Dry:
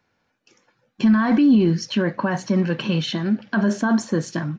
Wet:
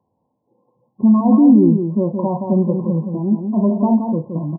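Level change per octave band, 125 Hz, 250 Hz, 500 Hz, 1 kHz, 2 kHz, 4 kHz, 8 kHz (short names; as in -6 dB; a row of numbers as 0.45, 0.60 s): +4.0 dB, +5.0 dB, +4.5 dB, +2.5 dB, under -40 dB, under -40 dB, n/a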